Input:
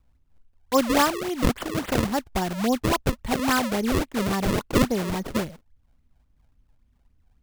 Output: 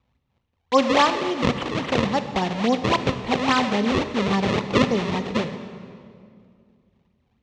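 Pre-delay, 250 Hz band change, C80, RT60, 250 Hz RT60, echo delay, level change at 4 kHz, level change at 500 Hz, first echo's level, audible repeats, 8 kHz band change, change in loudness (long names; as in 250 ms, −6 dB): 29 ms, +1.5 dB, 10.5 dB, 2.2 s, 2.7 s, no echo audible, +4.5 dB, +3.5 dB, no echo audible, no echo audible, −5.5 dB, +2.5 dB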